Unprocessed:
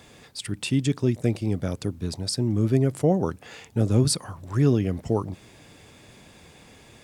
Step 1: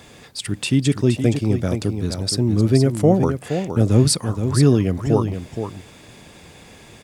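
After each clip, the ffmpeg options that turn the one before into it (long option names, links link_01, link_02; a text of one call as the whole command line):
ffmpeg -i in.wav -af "aecho=1:1:470:0.398,volume=5.5dB" out.wav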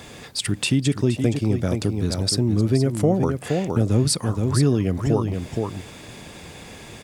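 ffmpeg -i in.wav -af "acompressor=threshold=-25dB:ratio=2,volume=4dB" out.wav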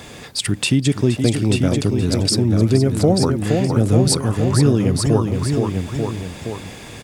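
ffmpeg -i in.wav -af "aecho=1:1:889:0.501,volume=3.5dB" out.wav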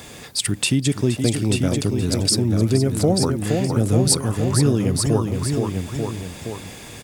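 ffmpeg -i in.wav -af "highshelf=frequency=7400:gain=9,volume=-3dB" out.wav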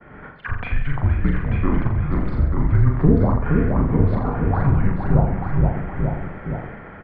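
ffmpeg -i in.wav -af "highpass=frequency=280:width_type=q:width=0.5412,highpass=frequency=280:width_type=q:width=1.307,lowpass=frequency=2100:width_type=q:width=0.5176,lowpass=frequency=2100:width_type=q:width=0.7071,lowpass=frequency=2100:width_type=q:width=1.932,afreqshift=-290,agate=range=-33dB:threshold=-40dB:ratio=3:detection=peak,aecho=1:1:40|84|132.4|185.6|244.2:0.631|0.398|0.251|0.158|0.1,volume=5.5dB" out.wav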